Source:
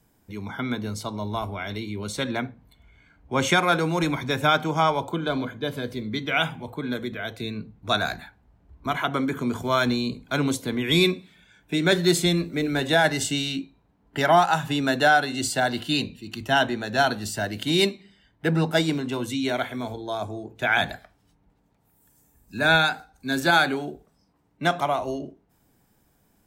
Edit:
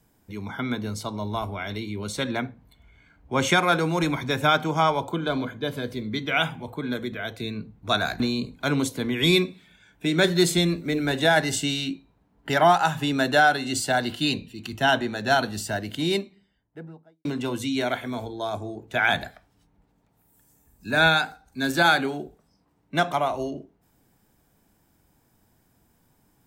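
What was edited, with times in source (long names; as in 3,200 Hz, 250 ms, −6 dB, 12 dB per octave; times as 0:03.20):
0:08.20–0:09.88: remove
0:17.19–0:18.93: fade out and dull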